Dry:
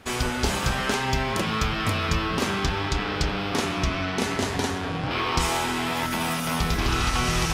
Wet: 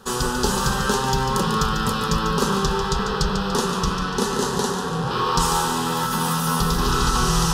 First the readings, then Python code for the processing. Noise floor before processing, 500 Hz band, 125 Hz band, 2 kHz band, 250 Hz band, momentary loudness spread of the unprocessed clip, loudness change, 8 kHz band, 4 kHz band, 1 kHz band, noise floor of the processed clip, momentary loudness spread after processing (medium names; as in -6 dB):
-29 dBFS, +4.5 dB, +3.5 dB, -1.0 dB, +4.0 dB, 3 LU, +3.5 dB, +6.0 dB, +2.5 dB, +5.5 dB, -25 dBFS, 4 LU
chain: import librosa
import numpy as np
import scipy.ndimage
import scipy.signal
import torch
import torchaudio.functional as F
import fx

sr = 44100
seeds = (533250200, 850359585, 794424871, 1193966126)

p1 = fx.fixed_phaser(x, sr, hz=440.0, stages=8)
p2 = p1 + fx.echo_feedback(p1, sr, ms=145, feedback_pct=49, wet_db=-8, dry=0)
y = p2 * librosa.db_to_amplitude(6.5)